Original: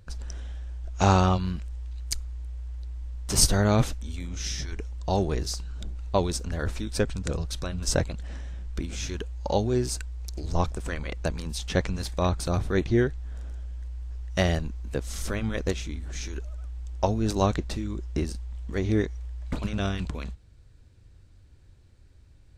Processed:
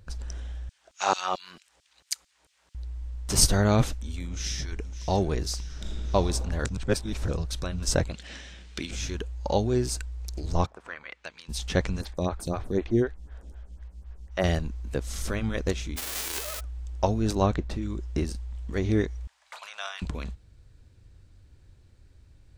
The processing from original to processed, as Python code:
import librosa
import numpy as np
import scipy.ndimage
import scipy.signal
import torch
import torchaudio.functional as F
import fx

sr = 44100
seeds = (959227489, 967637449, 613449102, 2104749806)

y = fx.filter_lfo_highpass(x, sr, shape='saw_down', hz=4.5, low_hz=380.0, high_hz=4800.0, q=0.89, at=(0.69, 2.75))
y = fx.echo_throw(y, sr, start_s=4.28, length_s=0.58, ms=560, feedback_pct=65, wet_db=-13.5)
y = fx.reverb_throw(y, sr, start_s=5.65, length_s=0.49, rt60_s=2.8, drr_db=-4.0)
y = fx.weighting(y, sr, curve='D', at=(8.13, 8.91))
y = fx.bandpass_q(y, sr, hz=fx.line((10.65, 830.0), (11.48, 3500.0)), q=1.3, at=(10.65, 11.48), fade=0.02)
y = fx.stagger_phaser(y, sr, hz=4.0, at=(12.01, 14.44))
y = fx.envelope_flatten(y, sr, power=0.1, at=(15.96, 16.59), fade=0.02)
y = fx.high_shelf(y, sr, hz=fx.line((17.34, 4800.0), (17.81, 3300.0)), db=-10.0, at=(17.34, 17.81), fade=0.02)
y = fx.cheby2_highpass(y, sr, hz=300.0, order=4, stop_db=50, at=(19.27, 20.02))
y = fx.edit(y, sr, fx.reverse_span(start_s=6.65, length_s=0.63), tone=tone)